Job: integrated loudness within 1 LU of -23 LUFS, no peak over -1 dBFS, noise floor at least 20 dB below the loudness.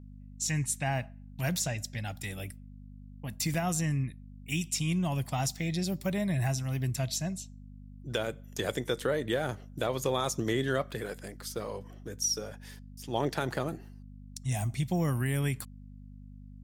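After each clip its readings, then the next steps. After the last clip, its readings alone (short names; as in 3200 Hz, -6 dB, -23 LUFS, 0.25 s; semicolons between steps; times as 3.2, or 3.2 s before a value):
dropouts 3; longest dropout 4.2 ms; hum 50 Hz; harmonics up to 250 Hz; hum level -46 dBFS; loudness -32.5 LUFS; peak -15.5 dBFS; loudness target -23.0 LUFS
-> interpolate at 2.39/3.54/9, 4.2 ms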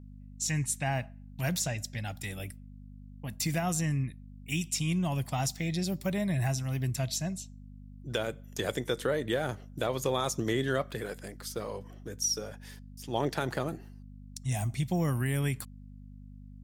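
dropouts 0; hum 50 Hz; harmonics up to 250 Hz; hum level -46 dBFS
-> de-hum 50 Hz, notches 5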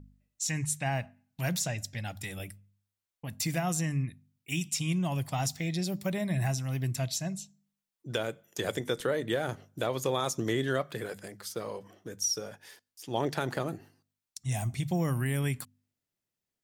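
hum none; loudness -32.5 LUFS; peak -15.5 dBFS; loudness target -23.0 LUFS
-> gain +9.5 dB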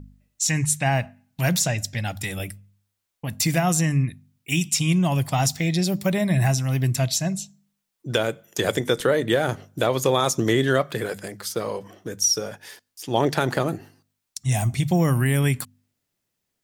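loudness -23.0 LUFS; peak -6.0 dBFS; noise floor -79 dBFS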